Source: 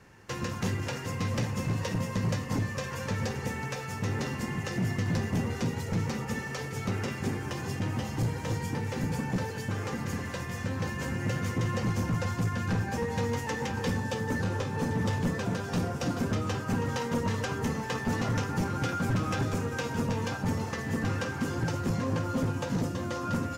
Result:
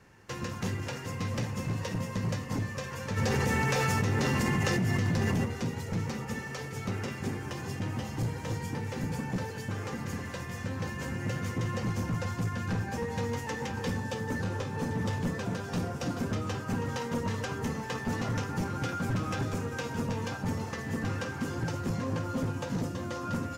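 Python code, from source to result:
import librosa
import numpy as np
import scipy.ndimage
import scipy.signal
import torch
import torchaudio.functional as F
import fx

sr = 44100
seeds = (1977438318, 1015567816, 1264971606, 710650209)

y = fx.env_flatten(x, sr, amount_pct=100, at=(3.16, 5.44), fade=0.02)
y = F.gain(torch.from_numpy(y), -2.5).numpy()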